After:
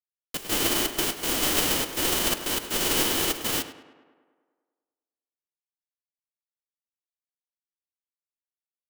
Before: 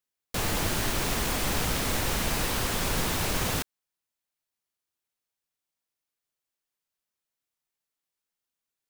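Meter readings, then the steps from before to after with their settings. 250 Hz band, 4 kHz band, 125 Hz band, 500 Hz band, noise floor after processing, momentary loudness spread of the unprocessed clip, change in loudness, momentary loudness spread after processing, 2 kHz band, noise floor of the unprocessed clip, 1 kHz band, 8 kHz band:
+1.5 dB, +5.5 dB, −8.0 dB, +2.5 dB, below −85 dBFS, 3 LU, +4.0 dB, 6 LU, +1.0 dB, below −85 dBFS, −0.5 dB, +4.5 dB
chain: spectral envelope flattened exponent 0.3
gate pattern "xxx.xxx.x.xx" 122 BPM −12 dB
hollow resonant body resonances 320/3,000 Hz, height 11 dB, ringing for 20 ms
bit reduction 6 bits
tape delay 102 ms, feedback 69%, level −6 dB, low-pass 2,900 Hz
expander for the loud parts 1.5 to 1, over −42 dBFS
level +2 dB

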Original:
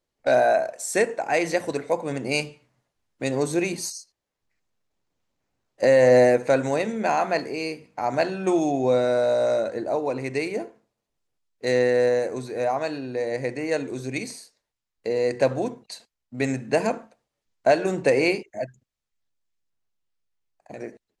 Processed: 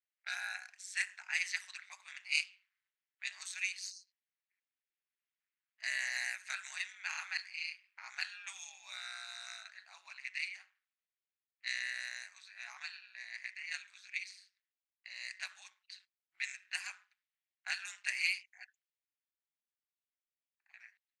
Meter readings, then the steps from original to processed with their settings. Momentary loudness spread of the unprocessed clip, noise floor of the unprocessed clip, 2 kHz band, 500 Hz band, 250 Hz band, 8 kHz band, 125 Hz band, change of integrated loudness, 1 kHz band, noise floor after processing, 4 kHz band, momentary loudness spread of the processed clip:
15 LU, −84 dBFS, −7.0 dB, below −40 dB, below −40 dB, −10.0 dB, below −40 dB, −16.5 dB, −27.5 dB, below −85 dBFS, −5.5 dB, 18 LU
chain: low-pass that shuts in the quiet parts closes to 2,300 Hz, open at −15.5 dBFS
ring modulation 94 Hz
inverse Chebyshev high-pass filter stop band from 510 Hz, stop band 60 dB
level −2 dB

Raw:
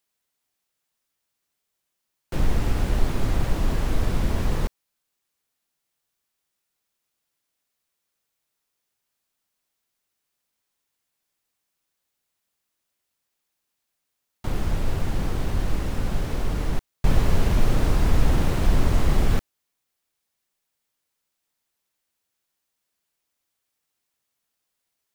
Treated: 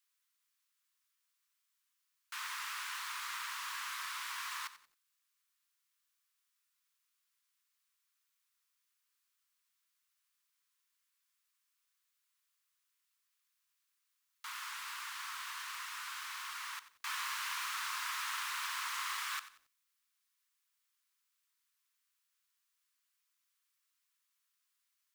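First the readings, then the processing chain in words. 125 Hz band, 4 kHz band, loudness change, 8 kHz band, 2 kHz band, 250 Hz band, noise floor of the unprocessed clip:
below −40 dB, −2.5 dB, −13.5 dB, −2.5 dB, −2.5 dB, below −40 dB, −80 dBFS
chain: Butterworth high-pass 1,000 Hz 72 dB per octave
feedback echo at a low word length 91 ms, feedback 35%, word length 10 bits, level −14 dB
level −2.5 dB

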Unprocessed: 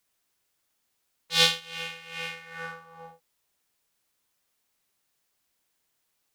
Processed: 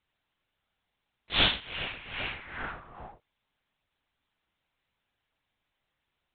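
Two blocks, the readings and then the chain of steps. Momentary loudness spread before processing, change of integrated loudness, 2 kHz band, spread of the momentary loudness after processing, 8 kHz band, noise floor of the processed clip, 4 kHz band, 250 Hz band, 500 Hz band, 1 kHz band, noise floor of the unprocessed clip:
18 LU, −3.5 dB, −1.5 dB, 20 LU, below −40 dB, −83 dBFS, −3.0 dB, can't be measured, −3.5 dB, 0.0 dB, −76 dBFS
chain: in parallel at −5 dB: soft clipping −20 dBFS, distortion −5 dB
on the sum: linear-prediction vocoder at 8 kHz whisper
level −3 dB

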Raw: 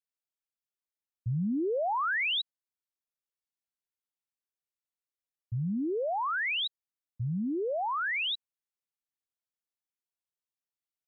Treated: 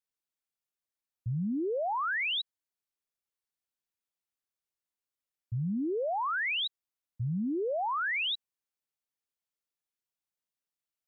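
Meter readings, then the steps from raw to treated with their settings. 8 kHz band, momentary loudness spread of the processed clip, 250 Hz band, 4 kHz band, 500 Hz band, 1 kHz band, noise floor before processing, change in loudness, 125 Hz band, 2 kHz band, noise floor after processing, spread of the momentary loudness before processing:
can't be measured, 8 LU, −1.0 dB, −1.0 dB, −1.0 dB, −1.0 dB, below −85 dBFS, −1.0 dB, −1.0 dB, −1.0 dB, below −85 dBFS, 8 LU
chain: dynamic equaliser 820 Hz, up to +4 dB, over −47 dBFS, Q 2.5
brickwall limiter −28 dBFS, peak gain reduction 6 dB

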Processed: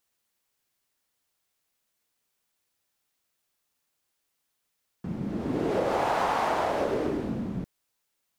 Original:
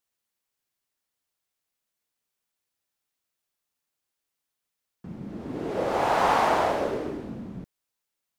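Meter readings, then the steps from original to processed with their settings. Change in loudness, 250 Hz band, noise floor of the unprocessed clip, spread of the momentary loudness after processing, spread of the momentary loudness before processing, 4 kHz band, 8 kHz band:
−3.0 dB, +2.5 dB, −84 dBFS, 12 LU, 19 LU, −3.0 dB, −3.0 dB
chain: downward compressor 12 to 1, threshold −28 dBFS, peak gain reduction 11 dB
level +5.5 dB

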